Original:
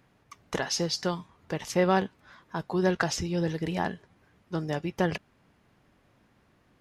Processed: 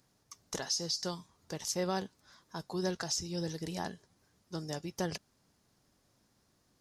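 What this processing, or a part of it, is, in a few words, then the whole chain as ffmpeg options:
over-bright horn tweeter: -af "highshelf=f=3.7k:t=q:w=1.5:g=12,alimiter=limit=-14dB:level=0:latency=1:release=132,volume=-8.5dB"

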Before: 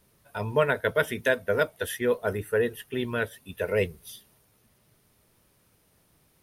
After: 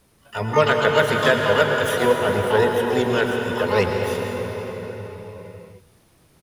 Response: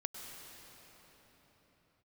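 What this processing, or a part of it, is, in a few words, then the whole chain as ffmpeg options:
shimmer-style reverb: -filter_complex "[0:a]lowpass=11k,asplit=2[a][b];[b]adelay=111,lowpass=f=1.5k:p=1,volume=-22.5dB,asplit=2[c][d];[d]adelay=111,lowpass=f=1.5k:p=1,volume=0.52,asplit=2[e][f];[f]adelay=111,lowpass=f=1.5k:p=1,volume=0.52,asplit=2[g][h];[h]adelay=111,lowpass=f=1.5k:p=1,volume=0.52[i];[a][c][e][g][i]amix=inputs=5:normalize=0,asplit=2[j][k];[k]asetrate=88200,aresample=44100,atempo=0.5,volume=-8dB[l];[j][l]amix=inputs=2:normalize=0[m];[1:a]atrim=start_sample=2205[n];[m][n]afir=irnorm=-1:irlink=0,volume=8dB"

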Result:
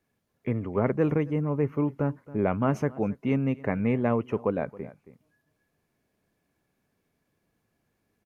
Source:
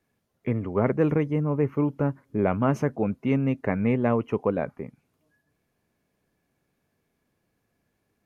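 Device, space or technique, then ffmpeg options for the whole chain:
ducked delay: -filter_complex "[0:a]asplit=3[a][b][c];[b]adelay=272,volume=-5dB[d];[c]apad=whole_len=375914[e];[d][e]sidechaincompress=threshold=-40dB:ratio=5:attack=28:release=757[f];[a][f]amix=inputs=2:normalize=0,volume=-2dB"

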